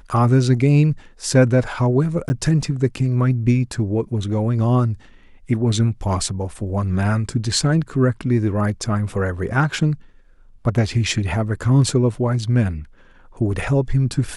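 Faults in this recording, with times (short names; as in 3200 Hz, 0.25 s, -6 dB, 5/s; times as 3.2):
2.29–2.3 gap 10 ms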